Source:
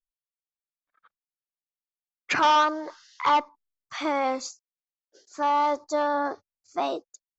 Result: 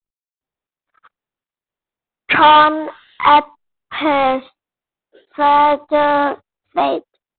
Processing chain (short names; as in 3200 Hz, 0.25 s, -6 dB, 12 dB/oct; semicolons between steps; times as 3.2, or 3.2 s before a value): AGC gain up to 7 dB; gain +4.5 dB; IMA ADPCM 32 kbps 8000 Hz